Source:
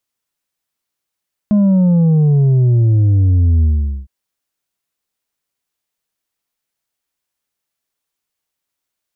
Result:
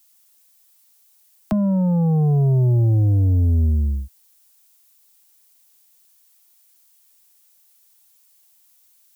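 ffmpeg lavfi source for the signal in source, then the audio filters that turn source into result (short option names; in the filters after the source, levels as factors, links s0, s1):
-f lavfi -i "aevalsrc='0.355*clip((2.56-t)/0.44,0,1)*tanh(1.68*sin(2*PI*210*2.56/log(65/210)*(exp(log(65/210)*t/2.56)-1)))/tanh(1.68)':d=2.56:s=44100"
-filter_complex "[0:a]equalizer=f=790:w=2:g=8,acrossover=split=110|270[s0][s1][s2];[s0]acompressor=threshold=0.112:ratio=4[s3];[s1]acompressor=threshold=0.0708:ratio=4[s4];[s2]acompressor=threshold=0.0316:ratio=4[s5];[s3][s4][s5]amix=inputs=3:normalize=0,acrossover=split=100|240|340[s6][s7][s8][s9];[s9]crystalizer=i=9:c=0[s10];[s6][s7][s8][s10]amix=inputs=4:normalize=0"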